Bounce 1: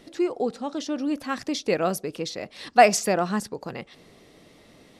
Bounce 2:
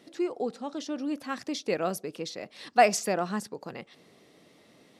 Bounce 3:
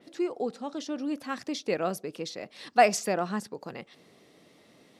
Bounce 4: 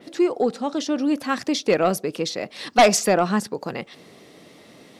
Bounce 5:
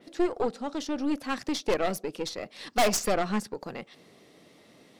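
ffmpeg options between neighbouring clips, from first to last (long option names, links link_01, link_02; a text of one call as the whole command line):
ffmpeg -i in.wav -af "highpass=130,volume=-5dB" out.wav
ffmpeg -i in.wav -af "adynamicequalizer=threshold=0.00501:dfrequency=4500:dqfactor=0.7:tfrequency=4500:tqfactor=0.7:attack=5:release=100:ratio=0.375:range=2:mode=cutabove:tftype=highshelf" out.wav
ffmpeg -i in.wav -af "aeval=exprs='0.447*sin(PI/2*2.51*val(0)/0.447)':channel_layout=same,volume=-1.5dB" out.wav
ffmpeg -i in.wav -af "aeval=exprs='0.398*(cos(1*acos(clip(val(0)/0.398,-1,1)))-cos(1*PI/2))+0.0398*(cos(3*acos(clip(val(0)/0.398,-1,1)))-cos(3*PI/2))+0.0708*(cos(4*acos(clip(val(0)/0.398,-1,1)))-cos(4*PI/2))+0.1*(cos(5*acos(clip(val(0)/0.398,-1,1)))-cos(5*PI/2))+0.0562*(cos(7*acos(clip(val(0)/0.398,-1,1)))-cos(7*PI/2))':channel_layout=same,volume=-8dB" out.wav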